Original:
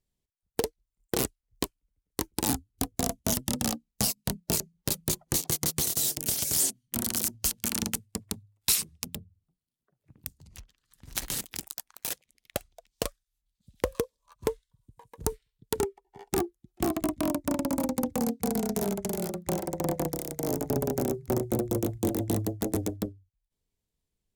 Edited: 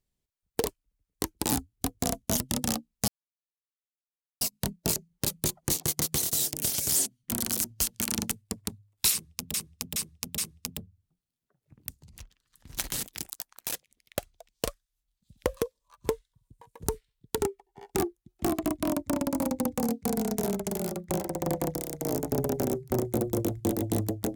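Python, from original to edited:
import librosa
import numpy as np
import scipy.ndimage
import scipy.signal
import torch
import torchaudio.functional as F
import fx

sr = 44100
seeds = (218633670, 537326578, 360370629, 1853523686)

y = fx.edit(x, sr, fx.cut(start_s=0.66, length_s=0.97),
    fx.insert_silence(at_s=4.05, length_s=1.33),
    fx.repeat(start_s=8.76, length_s=0.42, count=4), tone=tone)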